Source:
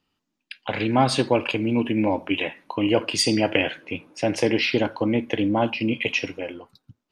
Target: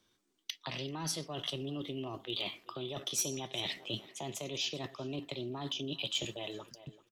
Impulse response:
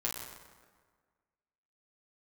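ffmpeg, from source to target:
-filter_complex "[0:a]areverse,acompressor=threshold=-30dB:ratio=16,areverse,asetrate=53981,aresample=44100,atempo=0.816958,asplit=2[link_01][link_02];[link_02]aecho=0:1:388|776:0.075|0.0127[link_03];[link_01][link_03]amix=inputs=2:normalize=0,acrossover=split=210|3000[link_04][link_05][link_06];[link_05]acompressor=threshold=-41dB:ratio=6[link_07];[link_04][link_07][link_06]amix=inputs=3:normalize=0,highshelf=frequency=4100:gain=5.5,asoftclip=type=hard:threshold=-24.5dB"

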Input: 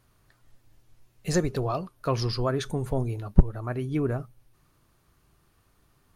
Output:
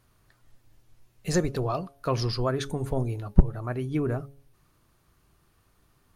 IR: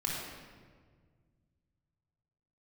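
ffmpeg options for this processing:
-af "bandreject=frequency=139.4:width_type=h:width=4,bandreject=frequency=278.8:width_type=h:width=4,bandreject=frequency=418.2:width_type=h:width=4,bandreject=frequency=557.6:width_type=h:width=4,bandreject=frequency=697:width_type=h:width=4,bandreject=frequency=836.4:width_type=h:width=4"

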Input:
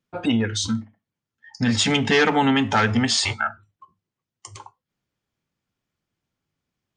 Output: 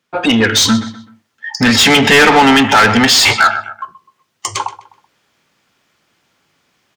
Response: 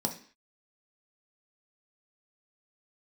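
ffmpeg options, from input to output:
-filter_complex "[0:a]asplit=2[link_01][link_02];[link_02]adelay=127,lowpass=frequency=4100:poles=1,volume=-17dB,asplit=2[link_03][link_04];[link_04]adelay=127,lowpass=frequency=4100:poles=1,volume=0.35,asplit=2[link_05][link_06];[link_06]adelay=127,lowpass=frequency=4100:poles=1,volume=0.35[link_07];[link_01][link_03][link_05][link_07]amix=inputs=4:normalize=0,dynaudnorm=framelen=110:gausssize=7:maxgain=9.5dB,asplit=2[link_08][link_09];[link_09]highpass=frequency=720:poles=1,volume=22dB,asoftclip=type=tanh:threshold=-1dB[link_10];[link_08][link_10]amix=inputs=2:normalize=0,lowpass=frequency=5900:poles=1,volume=-6dB"

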